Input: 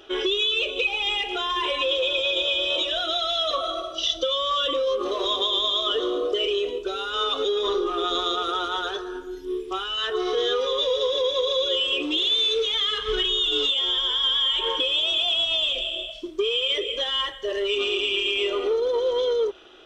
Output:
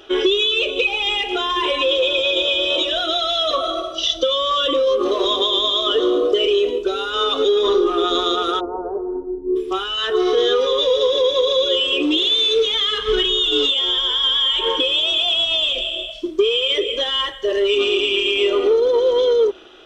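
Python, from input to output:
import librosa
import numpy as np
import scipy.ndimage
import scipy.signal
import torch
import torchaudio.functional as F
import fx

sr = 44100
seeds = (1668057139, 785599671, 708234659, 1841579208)

y = fx.dynamic_eq(x, sr, hz=270.0, q=0.86, threshold_db=-40.0, ratio=4.0, max_db=6)
y = fx.steep_lowpass(y, sr, hz=920.0, slope=36, at=(8.59, 9.55), fade=0.02)
y = y * 10.0 ** (4.5 / 20.0)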